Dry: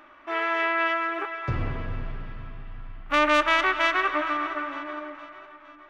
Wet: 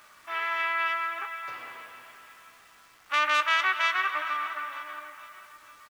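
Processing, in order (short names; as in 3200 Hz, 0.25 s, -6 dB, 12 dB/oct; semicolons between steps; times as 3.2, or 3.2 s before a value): HPF 1000 Hz 12 dB/oct; high shelf 3100 Hz +3 dB; bit-crush 9-bit; doubler 16 ms -12.5 dB; gain -2.5 dB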